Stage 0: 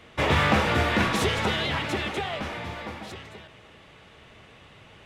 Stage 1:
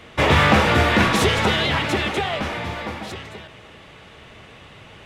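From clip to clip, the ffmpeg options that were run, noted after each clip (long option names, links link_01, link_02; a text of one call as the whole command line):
ffmpeg -i in.wav -af "acontrast=73" out.wav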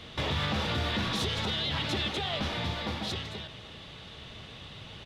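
ffmpeg -i in.wav -af "firequalizer=gain_entry='entry(150,0);entry(350,-5);entry(2300,-6);entry(3600,6);entry(7500,-5)':delay=0.05:min_phase=1,alimiter=limit=-21.5dB:level=0:latency=1:release=383" out.wav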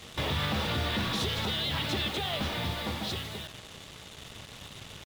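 ffmpeg -i in.wav -af "acrusher=bits=6:mix=0:aa=0.5" out.wav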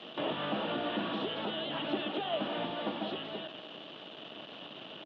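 ffmpeg -i in.wav -filter_complex "[0:a]alimiter=level_in=1dB:limit=-24dB:level=0:latency=1:release=321,volume=-1dB,highpass=frequency=190:width=0.5412,highpass=frequency=190:width=1.3066,equalizer=frequency=310:width_type=q:width=4:gain=8,equalizer=frequency=640:width_type=q:width=4:gain=8,equalizer=frequency=2100:width_type=q:width=4:gain=-9,equalizer=frequency=3000:width_type=q:width=4:gain=9,lowpass=frequency=3400:width=0.5412,lowpass=frequency=3400:width=1.3066,acrossover=split=2600[link_01][link_02];[link_02]acompressor=threshold=-49dB:ratio=4:attack=1:release=60[link_03];[link_01][link_03]amix=inputs=2:normalize=0" out.wav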